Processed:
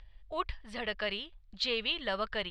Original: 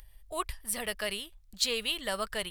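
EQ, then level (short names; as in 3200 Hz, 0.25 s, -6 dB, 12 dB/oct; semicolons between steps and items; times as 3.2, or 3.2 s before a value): LPF 4100 Hz 24 dB/oct; 0.0 dB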